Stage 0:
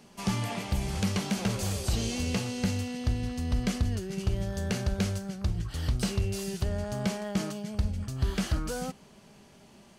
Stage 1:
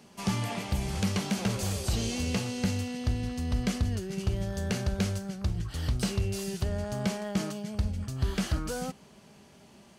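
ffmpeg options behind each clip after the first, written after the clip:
-af "highpass=40"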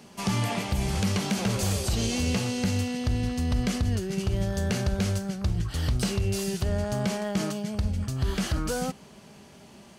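-af "alimiter=limit=0.0841:level=0:latency=1:release=68,volume=1.78"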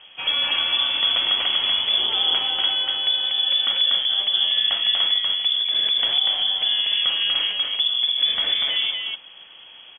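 -filter_complex "[0:a]asplit=2[s0][s1];[s1]aecho=0:1:241:0.708[s2];[s0][s2]amix=inputs=2:normalize=0,lowpass=f=3000:t=q:w=0.5098,lowpass=f=3000:t=q:w=0.6013,lowpass=f=3000:t=q:w=0.9,lowpass=f=3000:t=q:w=2.563,afreqshift=-3500,volume=1.58"

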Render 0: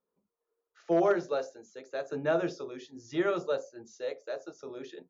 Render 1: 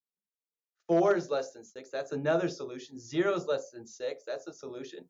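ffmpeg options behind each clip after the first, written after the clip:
-af "agate=range=0.0398:threshold=0.00158:ratio=16:detection=peak,bass=f=250:g=4,treble=f=4000:g=6"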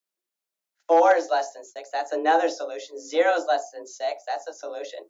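-af "afreqshift=160,volume=2.37"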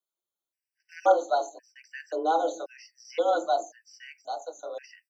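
-filter_complex "[0:a]acrossover=split=270[s0][s1];[s0]adelay=220[s2];[s2][s1]amix=inputs=2:normalize=0,aphaser=in_gain=1:out_gain=1:delay=3.4:decay=0.27:speed=0.9:type=triangular,afftfilt=real='re*gt(sin(2*PI*0.94*pts/sr)*(1-2*mod(floor(b*sr/1024/1500),2)),0)':imag='im*gt(sin(2*PI*0.94*pts/sr)*(1-2*mod(floor(b*sr/1024/1500),2)),0)':win_size=1024:overlap=0.75,volume=0.708"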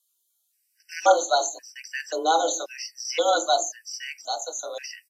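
-af "crystalizer=i=9.5:c=0,aresample=32000,aresample=44100" -ar 48000 -c:a wmav2 -b:a 64k

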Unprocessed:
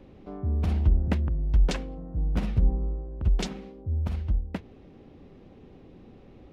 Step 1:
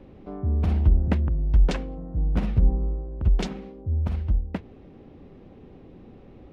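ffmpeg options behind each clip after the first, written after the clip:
-af "highshelf=f=3800:g=-8.5,volume=1.41"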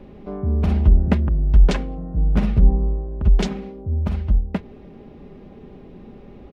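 -af "aecho=1:1:4.9:0.37,volume=1.78"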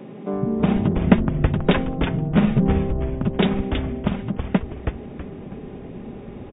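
-filter_complex "[0:a]afftfilt=real='re*between(b*sr/4096,110,3800)':imag='im*between(b*sr/4096,110,3800)':win_size=4096:overlap=0.75,asplit=6[s0][s1][s2][s3][s4][s5];[s1]adelay=324,afreqshift=-130,volume=0.562[s6];[s2]adelay=648,afreqshift=-260,volume=0.209[s7];[s3]adelay=972,afreqshift=-390,volume=0.0767[s8];[s4]adelay=1296,afreqshift=-520,volume=0.0285[s9];[s5]adelay=1620,afreqshift=-650,volume=0.0106[s10];[s0][s6][s7][s8][s9][s10]amix=inputs=6:normalize=0,volume=1.88"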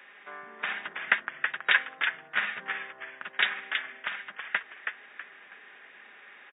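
-af "highpass=f=1700:t=q:w=4.1,volume=0.794"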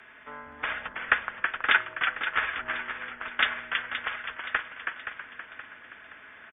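-af "afreqshift=-150,aecho=1:1:523|1046|1569|2092|2615:0.335|0.154|0.0709|0.0326|0.015,volume=1.12"

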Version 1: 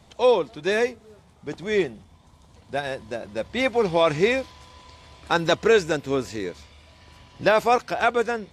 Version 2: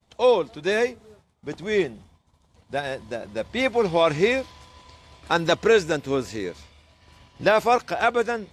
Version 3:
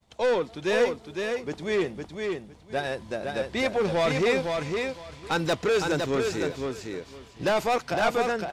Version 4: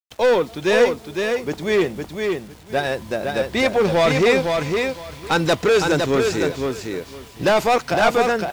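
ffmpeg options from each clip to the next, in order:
-af "agate=range=0.0224:threshold=0.00562:ratio=3:detection=peak"
-filter_complex "[0:a]asoftclip=type=tanh:threshold=0.106,asplit=2[s0][s1];[s1]aecho=0:1:509|1018|1527:0.596|0.107|0.0193[s2];[s0][s2]amix=inputs=2:normalize=0"
-af "acrusher=bits=8:mix=0:aa=0.000001,volume=2.37"

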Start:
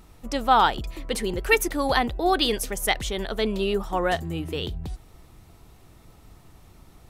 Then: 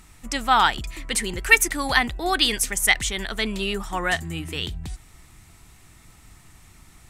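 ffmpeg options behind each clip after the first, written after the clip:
-af "equalizer=f=500:t=o:w=1:g=-8,equalizer=f=2000:t=o:w=1:g=8,equalizer=f=8000:t=o:w=1:g=11"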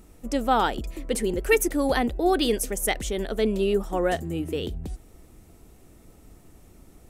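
-af "equalizer=f=125:t=o:w=1:g=-5,equalizer=f=250:t=o:w=1:g=4,equalizer=f=500:t=o:w=1:g=11,equalizer=f=1000:t=o:w=1:g=-7,equalizer=f=2000:t=o:w=1:g=-9,equalizer=f=4000:t=o:w=1:g=-7,equalizer=f=8000:t=o:w=1:g=-7"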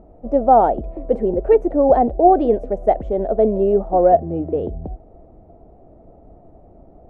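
-af "lowpass=f=670:t=q:w=4.9,volume=1.5"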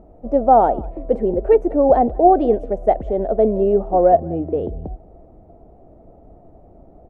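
-af "aecho=1:1:192:0.0668"

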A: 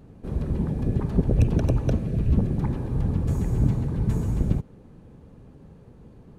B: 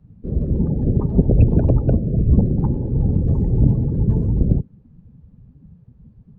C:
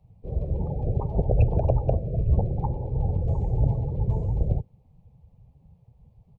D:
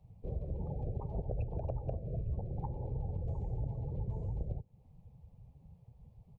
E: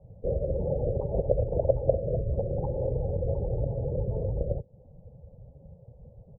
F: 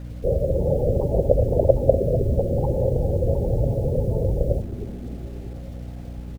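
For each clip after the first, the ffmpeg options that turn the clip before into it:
-filter_complex "[0:a]lowpass=5100,afftdn=nr=21:nf=-35,acrossover=split=150|900[s0][s1][s2];[s2]alimiter=level_in=6.31:limit=0.0631:level=0:latency=1:release=364,volume=0.158[s3];[s0][s1][s3]amix=inputs=3:normalize=0,volume=2.11"
-af "firequalizer=gain_entry='entry(110,0);entry(240,-14);entry(490,4);entry(780,12);entry(1500,-11);entry(2200,6)':delay=0.05:min_phase=1,volume=0.501"
-af "acompressor=threshold=0.0224:ratio=4,volume=0.75"
-af "lowpass=f=550:t=q:w=6.2,volume=2.11"
-filter_complex "[0:a]acrusher=bits=9:mix=0:aa=0.000001,aeval=exprs='val(0)+0.00891*(sin(2*PI*60*n/s)+sin(2*PI*2*60*n/s)/2+sin(2*PI*3*60*n/s)/3+sin(2*PI*4*60*n/s)/4+sin(2*PI*5*60*n/s)/5)':c=same,asplit=2[s0][s1];[s1]asplit=6[s2][s3][s4][s5][s6][s7];[s2]adelay=314,afreqshift=-150,volume=0.251[s8];[s3]adelay=628,afreqshift=-300,volume=0.133[s9];[s4]adelay=942,afreqshift=-450,volume=0.0708[s10];[s5]adelay=1256,afreqshift=-600,volume=0.0376[s11];[s6]adelay=1570,afreqshift=-750,volume=0.0197[s12];[s7]adelay=1884,afreqshift=-900,volume=0.0105[s13];[s8][s9][s10][s11][s12][s13]amix=inputs=6:normalize=0[s14];[s0][s14]amix=inputs=2:normalize=0,volume=2.24"

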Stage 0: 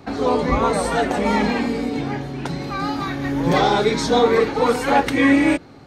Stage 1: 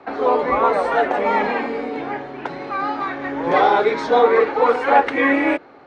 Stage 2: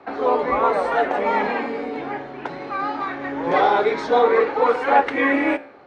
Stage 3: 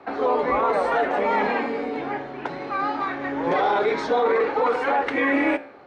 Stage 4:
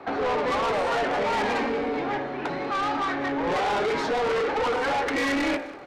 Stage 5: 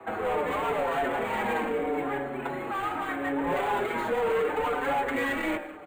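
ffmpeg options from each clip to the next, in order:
-filter_complex "[0:a]lowpass=5700,acrossover=split=350 2500:gain=0.0891 1 0.158[s0][s1][s2];[s0][s1][s2]amix=inputs=3:normalize=0,volume=1.58"
-af "flanger=delay=9.5:depth=7:regen=-83:speed=0.61:shape=sinusoidal,volume=1.33"
-af "alimiter=limit=0.224:level=0:latency=1:release=18"
-af "asoftclip=type=tanh:threshold=0.0473,aecho=1:1:192|384|576:0.119|0.0452|0.0172,volume=1.58"
-filter_complex "[0:a]acrossover=split=160|860|3200[s0][s1][s2][s3];[s3]acrusher=samples=8:mix=1:aa=0.000001[s4];[s0][s1][s2][s4]amix=inputs=4:normalize=0,asplit=2[s5][s6];[s6]adelay=5.7,afreqshift=-0.75[s7];[s5][s7]amix=inputs=2:normalize=1"

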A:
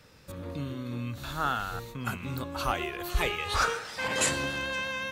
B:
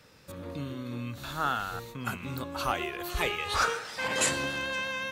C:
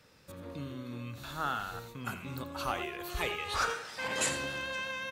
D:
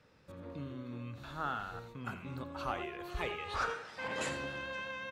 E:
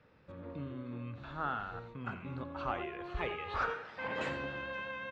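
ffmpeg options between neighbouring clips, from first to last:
-af "lowshelf=f=78:g=-9"
-af "aecho=1:1:85:0.237,volume=0.596"
-af "aemphasis=mode=reproduction:type=75kf,volume=0.794"
-af "lowpass=2900,volume=1.12"

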